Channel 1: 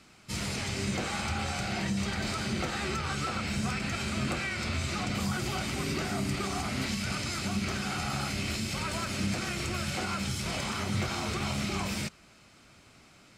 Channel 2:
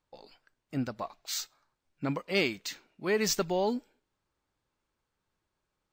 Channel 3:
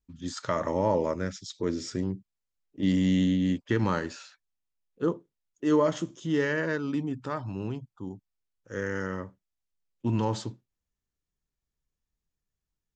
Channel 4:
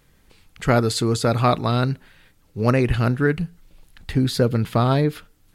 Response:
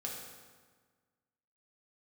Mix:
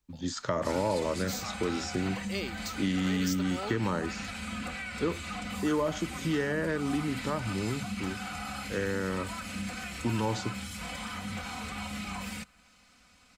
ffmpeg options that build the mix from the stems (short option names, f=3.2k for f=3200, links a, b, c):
-filter_complex "[0:a]equalizer=f=350:w=1.3:g=-9.5,aecho=1:1:4:1,adynamicequalizer=threshold=0.00282:dfrequency=5400:dqfactor=1.6:tfrequency=5400:tqfactor=1.6:attack=5:release=100:ratio=0.375:range=3.5:mode=cutabove:tftype=bell,adelay=350,volume=-5.5dB[a];[1:a]highshelf=f=3.4k:g=12,volume=-8dB[b];[2:a]acontrast=73,volume=-4dB,asplit=2[c][d];[3:a]highpass=1.4k,volume=-13dB[e];[d]apad=whole_len=244330[f];[e][f]sidechaingate=range=-33dB:threshold=-45dB:ratio=16:detection=peak[g];[a][b][c][g]amix=inputs=4:normalize=0,acrossover=split=92|840[h][i][j];[h]acompressor=threshold=-46dB:ratio=4[k];[i]acompressor=threshold=-28dB:ratio=4[l];[j]acompressor=threshold=-35dB:ratio=4[m];[k][l][m]amix=inputs=3:normalize=0"